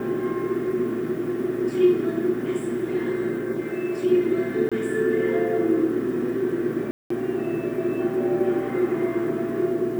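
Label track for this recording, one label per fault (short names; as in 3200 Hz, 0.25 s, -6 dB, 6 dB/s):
4.690000	4.720000	gap 26 ms
6.910000	7.100000	gap 0.194 s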